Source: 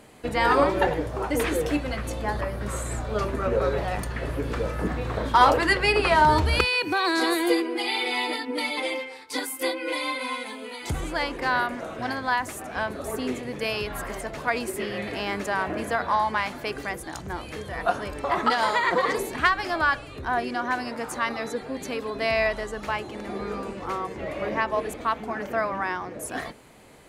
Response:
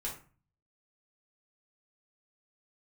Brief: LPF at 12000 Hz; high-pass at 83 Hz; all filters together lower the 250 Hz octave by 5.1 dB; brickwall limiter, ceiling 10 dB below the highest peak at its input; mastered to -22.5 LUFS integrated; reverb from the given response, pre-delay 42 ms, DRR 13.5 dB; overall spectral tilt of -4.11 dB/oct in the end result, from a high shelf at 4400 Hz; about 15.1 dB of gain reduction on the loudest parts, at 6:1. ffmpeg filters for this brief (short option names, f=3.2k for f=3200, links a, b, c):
-filter_complex "[0:a]highpass=83,lowpass=12k,equalizer=f=250:t=o:g=-7,highshelf=f=4.4k:g=-4.5,acompressor=threshold=-31dB:ratio=6,alimiter=level_in=4dB:limit=-24dB:level=0:latency=1,volume=-4dB,asplit=2[a][b];[1:a]atrim=start_sample=2205,adelay=42[c];[b][c]afir=irnorm=-1:irlink=0,volume=-14.5dB[d];[a][d]amix=inputs=2:normalize=0,volume=15dB"